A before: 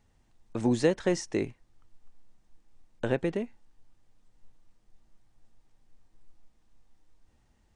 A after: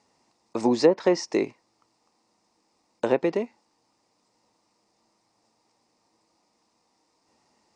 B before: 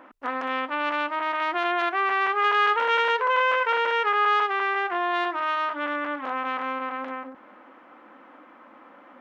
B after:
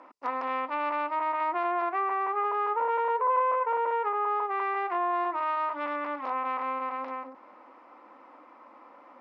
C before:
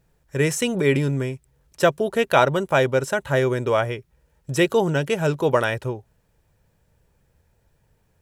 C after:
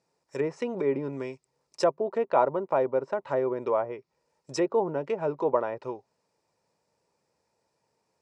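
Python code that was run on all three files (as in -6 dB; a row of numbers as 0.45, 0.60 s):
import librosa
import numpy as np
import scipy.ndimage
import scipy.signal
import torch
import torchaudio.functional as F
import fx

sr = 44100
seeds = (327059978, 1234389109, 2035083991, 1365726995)

y = fx.cabinet(x, sr, low_hz=300.0, low_slope=12, high_hz=8900.0, hz=(980.0, 1600.0, 3200.0, 5000.0), db=(5, -9, -8, 8))
y = fx.env_lowpass_down(y, sr, base_hz=1100.0, full_db=-19.5)
y = y * 10.0 ** (-30 / 20.0) / np.sqrt(np.mean(np.square(y)))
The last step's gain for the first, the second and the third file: +7.5, -2.5, -4.5 dB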